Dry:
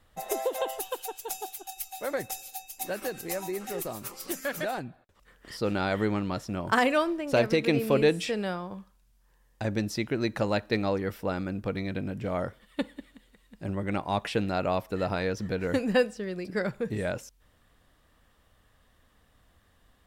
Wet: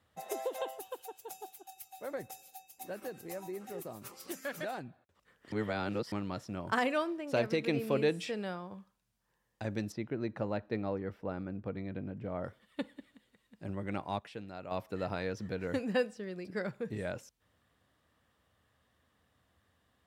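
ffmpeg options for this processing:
-filter_complex "[0:a]asettb=1/sr,asplit=3[a][b][c];[a]atrim=end=0.694[d];[b]atrim=start=0.69:end=4.02,asetpts=PTS-STARTPTS,afade=t=in:d=0.004:c=qsin,afade=t=out:st=3.326:d=0.004:c=qsin,equalizer=f=4k:w=0.31:g=-6[e];[c]atrim=start=4.016[f];[d][e]acrossfade=d=0.004:c1=hsin:c2=qsin[g];[g][f]acrossfade=d=0.004:c1=qsin:c2=hsin,asettb=1/sr,asplit=3[h][i][j];[h]atrim=end=9.924[k];[i]atrim=start=9.92:end=12.44,asetpts=PTS-STARTPTS,afade=t=in:d=0.004:c=qsin,afade=t=out:st=2.516:d=0.004:c=qsin,lowpass=f=1.2k:p=1[l];[j]atrim=start=12.436[m];[k][l]acrossfade=d=0.004:c1=hsin:c2=qsin[n];[n][m]acrossfade=d=0.004:c1=qsin:c2=hsin,asplit=5[o][p][q][r][s];[o]atrim=end=5.522[t];[p]atrim=start=5.518:end=6.122,asetpts=PTS-STARTPTS,areverse[u];[q]atrim=start=6.118:end=14.19,asetpts=PTS-STARTPTS,afade=t=out:st=7.872:d=0.2:c=log:silence=0.334965[v];[r]atrim=start=14.19:end=14.71,asetpts=PTS-STARTPTS,volume=-9.5dB[w];[s]atrim=start=14.71,asetpts=PTS-STARTPTS,afade=t=in:d=0.2:c=log:silence=0.334965[x];[t][u]acrossfade=d=0.004:c1=hsin:c2=hsin[y];[v][w][x]concat=n=3:v=0:a=1[z];[y][z]acrossfade=d=0.004:c1=hsin:c2=hsin,highpass=f=70:w=0.5412,highpass=f=70:w=1.3066,highshelf=f=8k:g=-4.5,volume=-7dB"

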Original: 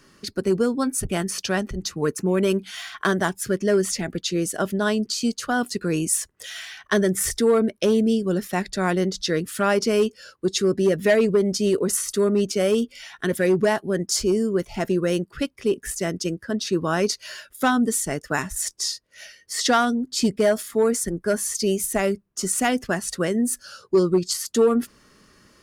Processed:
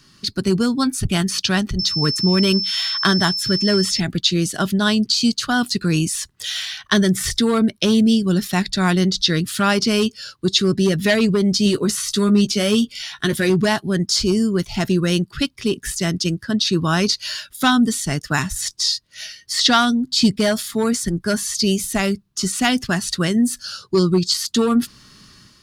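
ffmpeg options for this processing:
-filter_complex "[0:a]asettb=1/sr,asplit=3[a][b][c];[a]atrim=end=1.794[d];[b]atrim=start=1.79:end=4,asetpts=PTS-STARTPTS,afade=t=in:d=0.004:c=qsin,afade=t=out:st=2.206:d=0.004:c=qsin,aeval=exprs='val(0)+0.0282*sin(2*PI*5300*n/s)':c=same[e];[c]atrim=start=3.996[f];[d][e]acrossfade=d=0.004:c1=hsin:c2=qsin[g];[g][f]acrossfade=d=0.004:c1=qsin:c2=hsin,asettb=1/sr,asplit=3[h][i][j];[h]atrim=end=11.644[k];[i]atrim=start=11.64:end=13.5,asetpts=PTS-STARTPTS,afade=t=in:d=0.004:c=qsin,afade=t=out:st=1.856:d=0.004:c=qsin,asplit=2[l][m];[m]adelay=14,volume=-8dB[n];[l][n]amix=inputs=2:normalize=0,atrim=end_sample=82026[o];[j]atrim=start=13.496[p];[k][o]acrossfade=d=0.004:c1=hsin:c2=qsin[q];[q][p]acrossfade=d=0.004:c1=qsin:c2=hsin,dynaudnorm=f=110:g=5:m=5.5dB,equalizer=f=125:t=o:w=1:g=6,equalizer=f=500:t=o:w=1:g=-11,equalizer=f=2k:t=o:w=1:g=-3,equalizer=f=4k:t=o:w=1:g=9,acrossover=split=4600[r][s];[s]acompressor=threshold=-25dB:ratio=4:attack=1:release=60[t];[r][t]amix=inputs=2:normalize=0,volume=1dB"

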